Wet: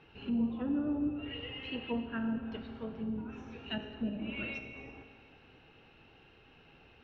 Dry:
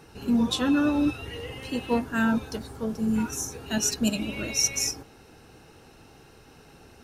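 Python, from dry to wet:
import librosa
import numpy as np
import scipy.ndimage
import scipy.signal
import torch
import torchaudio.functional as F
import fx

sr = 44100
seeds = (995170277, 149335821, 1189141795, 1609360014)

y = fx.env_lowpass_down(x, sr, base_hz=610.0, full_db=-21.5)
y = fx.ladder_lowpass(y, sr, hz=3300.0, resonance_pct=55)
y = fx.rev_schroeder(y, sr, rt60_s=1.9, comb_ms=27, drr_db=7.0)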